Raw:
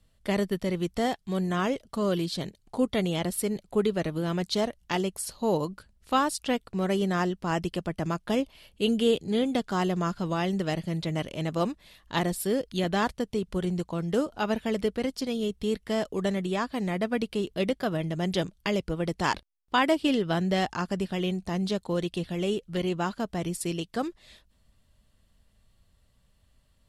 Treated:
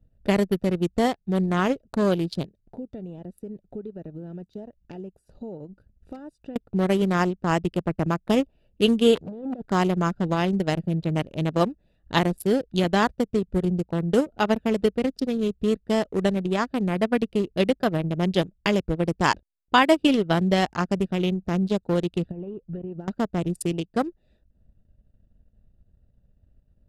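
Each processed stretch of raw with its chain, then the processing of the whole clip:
2.45–6.56 s: compression 2.5:1, threshold -44 dBFS + treble shelf 5.6 kHz +4 dB
9.15–9.68 s: dynamic bell 630 Hz, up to +6 dB, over -39 dBFS, Q 1 + compressor with a negative ratio -32 dBFS + transformer saturation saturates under 2 kHz
22.31–23.08 s: compression 16:1, threshold -33 dBFS + distance through air 260 m
whole clip: local Wiener filter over 41 samples; transient shaper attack +2 dB, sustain -8 dB; trim +5.5 dB

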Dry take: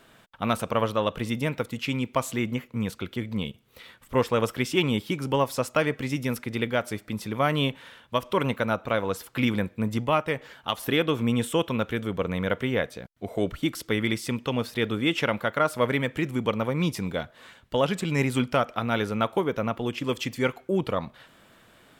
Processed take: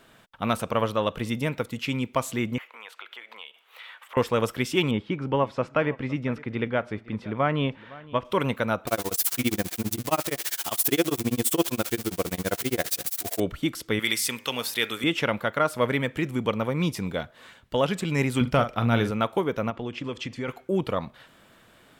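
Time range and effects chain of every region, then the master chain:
2.58–4.17 s: high-pass 470 Hz 24 dB/octave + compression 3:1, threshold -52 dBFS + high-order bell 1.6 kHz +11.5 dB 2.6 oct
4.91–8.25 s: low-pass 2.4 kHz + delay 510 ms -20 dB
8.87–13.40 s: zero-crossing glitches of -16.5 dBFS + tremolo 15 Hz, depth 99% + small resonant body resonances 340/710 Hz, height 9 dB
13.99–15.04 s: tilt EQ +4 dB/octave + de-hum 103.8 Hz, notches 25
18.41–19.11 s: bass shelf 170 Hz +10.5 dB + doubling 43 ms -10 dB
19.70–20.48 s: distance through air 88 m + compression 4:1, threshold -28 dBFS
whole clip: none

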